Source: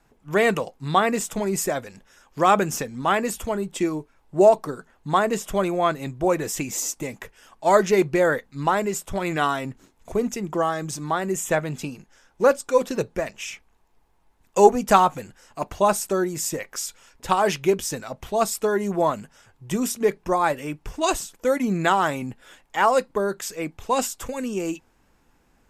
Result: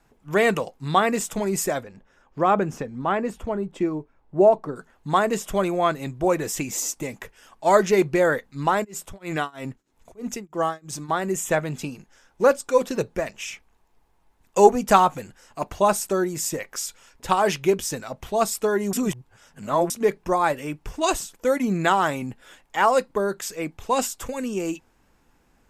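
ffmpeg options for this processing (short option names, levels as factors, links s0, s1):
-filter_complex "[0:a]asettb=1/sr,asplit=3[s0][s1][s2];[s0]atrim=end=1.834[s3];[s1]atrim=start=1.83:end=4.76,asetpts=PTS-STARTPTS,afade=t=in:d=0.004:c=qsin,afade=t=out:st=2.926:d=0.004:c=qsin,lowpass=f=1100:p=1[s4];[s2]atrim=start=4.756[s5];[s3][s4]acrossfade=d=0.004:c1=hsin:c2=qsin[s6];[s6][s5]acrossfade=d=0.004:c1=qsin:c2=hsin,asplit=3[s7][s8][s9];[s7]afade=t=out:st=8.83:d=0.02[s10];[s8]tremolo=f=3.1:d=0.97,afade=t=in:st=8.83:d=0.02,afade=t=out:st=11.08:d=0.02[s11];[s9]afade=t=in:st=11.08:d=0.02[s12];[s10][s11][s12]amix=inputs=3:normalize=0,asplit=3[s13][s14][s15];[s13]atrim=end=18.932[s16];[s14]atrim=start=18.928:end=19.902,asetpts=PTS-STARTPTS,areverse[s17];[s15]atrim=start=19.898[s18];[s16][s17]acrossfade=d=0.004:c1=hsin:c2=hsin[s19];[s19][s18]acrossfade=d=0.004:c1=hsin:c2=hsin"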